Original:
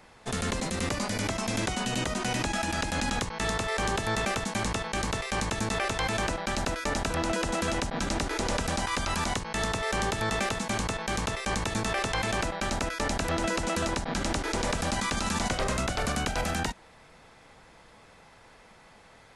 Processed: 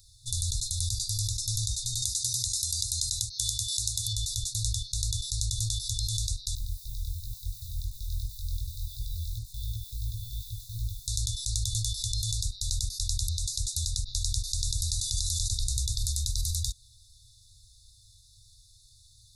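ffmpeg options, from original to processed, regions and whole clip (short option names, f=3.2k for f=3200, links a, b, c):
-filter_complex "[0:a]asettb=1/sr,asplit=3[a][b][c];[a]atrim=end=2.024[d];[b]atrim=start=2.02:end=4.13,asetpts=PTS-STARTPTS,afade=t=in:d=0.004:c=qsin,afade=t=out:st=2.106:d=0.004:c=qsin,highpass=f=140:p=1,highshelf=f=3.1k:g=10.5[e];[c]atrim=start=4.126[f];[d][e]acrossfade=d=0.004:c1=hsin:c2=qsin[g];[g][f]acrossfade=d=0.004:c1=qsin:c2=hsin,asettb=1/sr,asplit=3[h][i][j];[h]atrim=end=6.554[k];[i]atrim=start=6.55:end=11.08,asetpts=PTS-STARTPTS,afade=t=in:d=0.004:c=qsin,afade=t=out:st=4.526:d=0.004:c=qsin,lowpass=2.1k,flanger=delay=17.5:depth=6:speed=2.8,acrusher=bits=7:mix=0:aa=0.5[l];[j]atrim=start=11.076[m];[k][l]acrossfade=d=0.004:c1=hsin:c2=qsin[n];[n][m]acrossfade=d=0.004:c1=qsin:c2=hsin,highshelf=f=11k:g=9,afftfilt=real='re*(1-between(b*sr/4096,120,3500))':imag='im*(1-between(b*sr/4096,120,3500))':win_size=4096:overlap=0.75,acrossover=split=360[o][p];[p]acompressor=threshold=-31dB:ratio=6[q];[o][q]amix=inputs=2:normalize=0,volume=4.5dB"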